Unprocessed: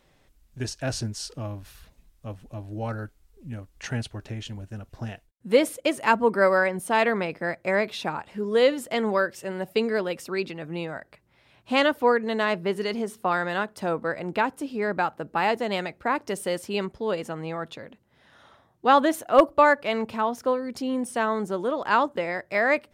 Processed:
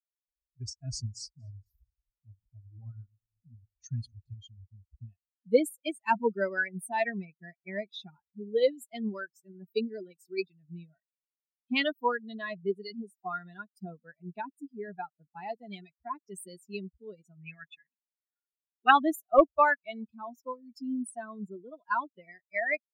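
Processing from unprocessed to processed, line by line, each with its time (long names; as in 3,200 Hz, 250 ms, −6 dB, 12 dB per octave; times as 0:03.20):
0:00.66–0:04.34: delay that swaps between a low-pass and a high-pass 117 ms, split 2,100 Hz, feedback 75%, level −12 dB
0:17.41–0:18.91: flat-topped bell 2,000 Hz +11.5 dB 1.2 octaves
whole clip: spectral dynamics exaggerated over time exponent 3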